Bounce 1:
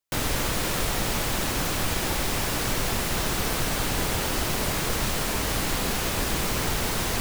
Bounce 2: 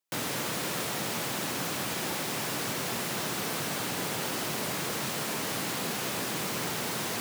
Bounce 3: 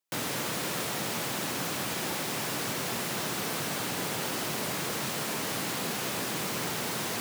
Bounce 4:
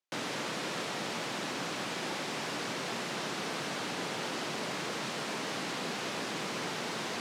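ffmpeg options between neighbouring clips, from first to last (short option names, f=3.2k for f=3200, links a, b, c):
-filter_complex "[0:a]highpass=f=130:w=0.5412,highpass=f=130:w=1.3066,asplit=2[a][b];[b]alimiter=level_in=2.5dB:limit=-24dB:level=0:latency=1,volume=-2.5dB,volume=1dB[c];[a][c]amix=inputs=2:normalize=0,volume=-8dB"
-af anull
-af "highpass=170,lowpass=5.7k,volume=-2dB"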